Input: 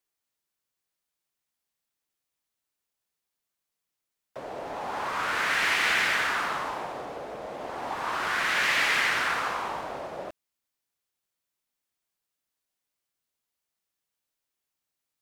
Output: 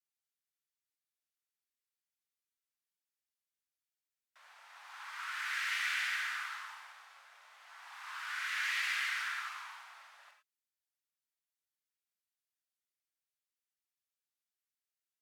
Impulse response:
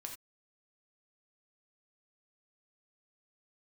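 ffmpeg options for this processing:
-filter_complex "[0:a]highpass=f=1.3k:w=0.5412,highpass=f=1.3k:w=1.3066[a];[1:a]atrim=start_sample=2205,asetrate=37044,aresample=44100[b];[a][b]afir=irnorm=-1:irlink=0,volume=-7.5dB"

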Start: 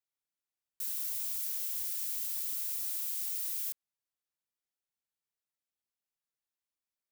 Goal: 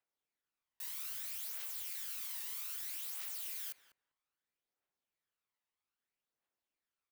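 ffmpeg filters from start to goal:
-filter_complex "[0:a]bass=f=250:g=-9,treble=f=4k:g=-12,aphaser=in_gain=1:out_gain=1:delay=1.1:decay=0.48:speed=0.62:type=triangular,asplit=2[a][b];[b]adelay=196,lowpass=f=960:p=1,volume=-6.5dB,asplit=2[c][d];[d]adelay=196,lowpass=f=960:p=1,volume=0.15,asplit=2[e][f];[f]adelay=196,lowpass=f=960:p=1,volume=0.15[g];[a][c][e][g]amix=inputs=4:normalize=0,volume=3.5dB"

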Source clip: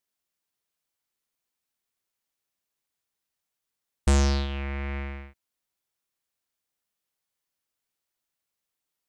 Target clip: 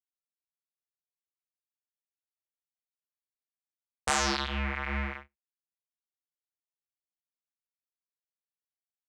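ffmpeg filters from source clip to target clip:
-filter_complex "[0:a]agate=range=-36dB:threshold=-37dB:ratio=16:detection=peak,acrossover=split=200|700|1600[a][b][c][d];[a]aeval=exprs='0.0299*(abs(mod(val(0)/0.0299+3,4)-2)-1)':c=same[e];[b]acompressor=threshold=-46dB:ratio=6[f];[c]crystalizer=i=8.5:c=0[g];[e][f][g][d]amix=inputs=4:normalize=0,flanger=delay=19:depth=3.1:speed=2.6,volume=5.5dB"

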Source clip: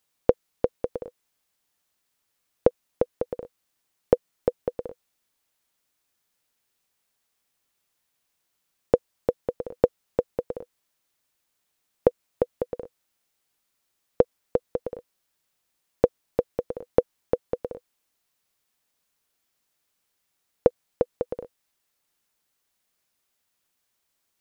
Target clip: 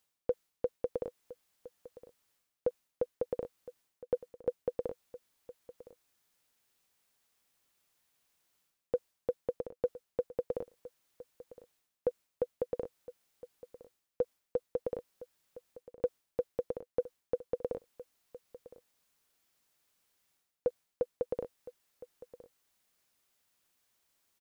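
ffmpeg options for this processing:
-af "areverse,acompressor=threshold=-30dB:ratio=6,areverse,aecho=1:1:1013:0.133"

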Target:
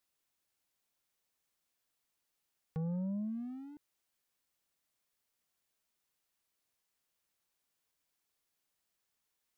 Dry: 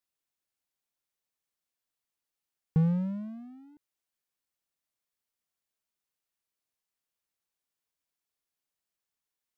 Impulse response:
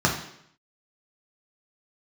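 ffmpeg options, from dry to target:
-filter_complex "[0:a]asettb=1/sr,asplit=3[a][b][c];[a]atrim=end=2.834[d];[b]atrim=start=2.83:end=3.63,asetpts=PTS-STARTPTS,afade=t=in:d=0.004:c=qsin,afade=t=out:st=0.796:d=0.004:c=qsin,bandreject=f=410.2:t=h:w=4,bandreject=f=820.4:t=h:w=4,bandreject=f=1.2306k:t=h:w=4[e];[c]atrim=start=3.626[f];[d][e]acrossfade=d=0.004:c1=hsin:c2=qsin[g];[g][f]acrossfade=d=0.004:c1=qsin:c2=hsin,acompressor=threshold=-32dB:ratio=3,asoftclip=type=tanh:threshold=-39dB,volume=5dB"

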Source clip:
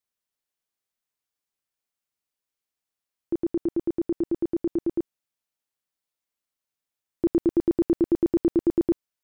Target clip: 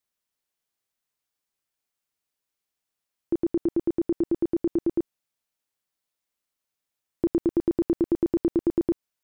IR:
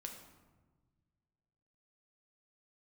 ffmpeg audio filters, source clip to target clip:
-af "acompressor=threshold=-22dB:ratio=6,volume=2.5dB"

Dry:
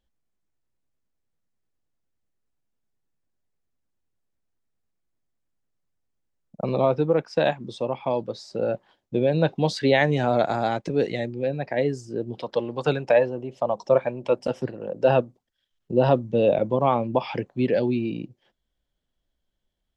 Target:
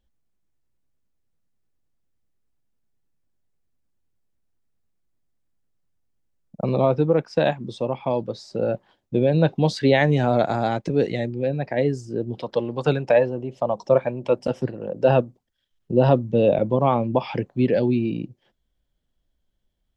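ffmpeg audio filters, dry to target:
-af "lowshelf=f=290:g=6"

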